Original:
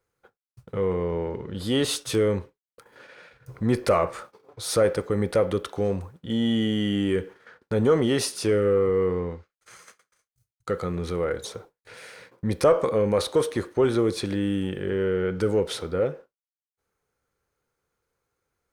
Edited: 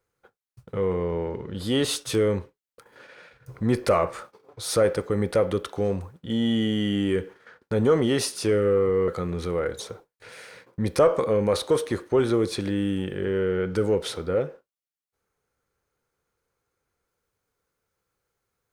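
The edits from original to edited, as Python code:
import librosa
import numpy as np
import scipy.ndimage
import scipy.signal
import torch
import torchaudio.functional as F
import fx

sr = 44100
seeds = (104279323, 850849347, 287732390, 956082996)

y = fx.edit(x, sr, fx.cut(start_s=9.08, length_s=1.65), tone=tone)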